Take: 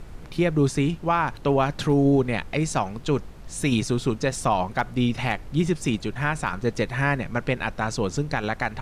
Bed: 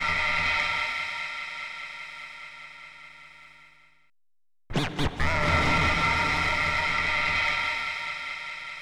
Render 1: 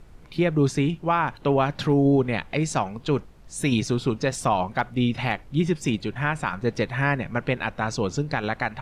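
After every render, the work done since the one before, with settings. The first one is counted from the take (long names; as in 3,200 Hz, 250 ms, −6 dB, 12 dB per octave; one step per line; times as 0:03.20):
noise reduction from a noise print 8 dB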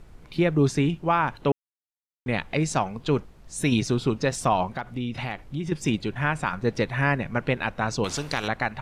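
0:01.52–0:02.26: silence
0:04.68–0:05.72: downward compressor 3 to 1, threshold −28 dBFS
0:08.04–0:08.48: every bin compressed towards the loudest bin 2 to 1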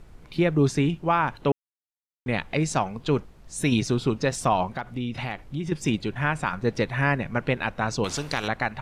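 no processing that can be heard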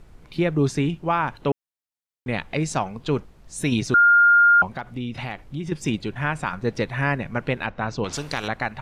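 0:03.94–0:04.62: beep over 1,410 Hz −11 dBFS
0:07.66–0:08.13: high-frequency loss of the air 130 metres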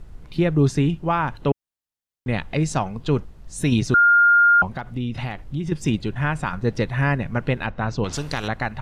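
low-shelf EQ 150 Hz +9 dB
notch filter 2,300 Hz, Q 19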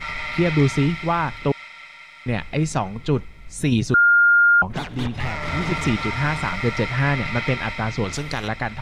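mix in bed −3.5 dB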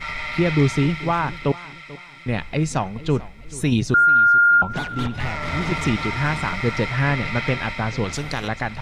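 feedback echo with a swinging delay time 438 ms, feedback 37%, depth 55 cents, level −19 dB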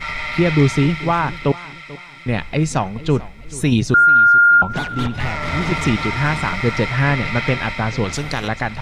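level +3.5 dB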